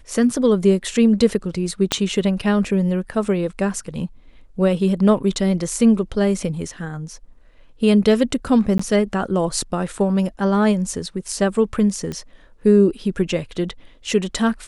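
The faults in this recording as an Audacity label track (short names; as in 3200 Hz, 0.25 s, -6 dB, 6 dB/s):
1.920000	1.920000	pop -2 dBFS
8.780000	8.790000	gap 14 ms
12.120000	12.120000	pop -16 dBFS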